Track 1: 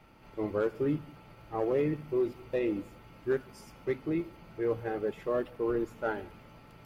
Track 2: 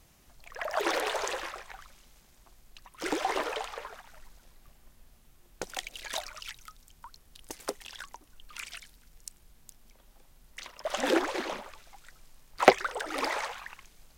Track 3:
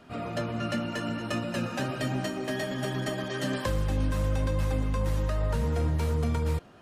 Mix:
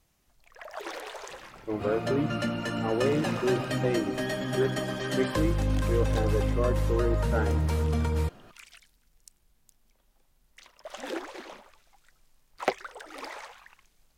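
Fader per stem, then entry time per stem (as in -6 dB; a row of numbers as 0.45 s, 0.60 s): +1.5 dB, -9.0 dB, +0.5 dB; 1.30 s, 0.00 s, 1.70 s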